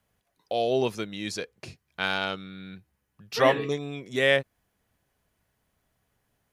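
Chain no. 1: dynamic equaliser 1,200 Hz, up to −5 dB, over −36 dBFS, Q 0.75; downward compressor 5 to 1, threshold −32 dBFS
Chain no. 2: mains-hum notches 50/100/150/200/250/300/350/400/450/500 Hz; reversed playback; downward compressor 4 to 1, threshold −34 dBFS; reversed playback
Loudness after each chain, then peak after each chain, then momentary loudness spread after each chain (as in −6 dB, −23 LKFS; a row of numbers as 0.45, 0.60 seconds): −37.5, −38.0 LKFS; −16.5, −21.5 dBFS; 9, 11 LU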